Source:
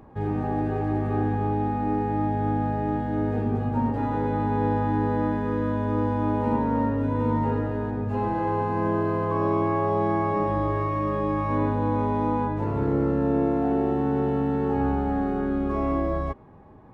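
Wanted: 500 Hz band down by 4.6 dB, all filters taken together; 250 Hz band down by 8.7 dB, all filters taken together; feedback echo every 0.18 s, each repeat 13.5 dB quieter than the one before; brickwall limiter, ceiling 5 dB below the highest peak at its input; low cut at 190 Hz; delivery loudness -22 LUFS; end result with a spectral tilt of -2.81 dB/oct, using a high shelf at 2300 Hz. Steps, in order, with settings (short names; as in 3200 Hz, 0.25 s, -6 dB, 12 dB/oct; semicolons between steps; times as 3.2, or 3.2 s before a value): HPF 190 Hz; bell 250 Hz -8.5 dB; bell 500 Hz -3 dB; high shelf 2300 Hz +4.5 dB; limiter -21.5 dBFS; feedback echo 0.18 s, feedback 21%, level -13.5 dB; gain +8.5 dB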